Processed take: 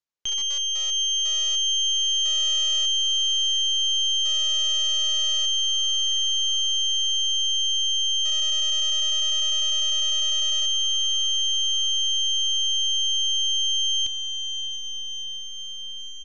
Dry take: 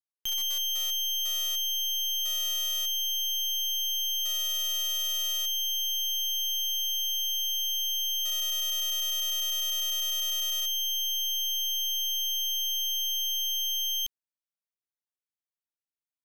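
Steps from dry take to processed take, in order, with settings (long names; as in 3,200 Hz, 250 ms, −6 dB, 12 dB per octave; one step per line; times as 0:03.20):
feedback delay with all-pass diffusion 695 ms, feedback 72%, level −10 dB
downsampling to 16,000 Hz
level +4.5 dB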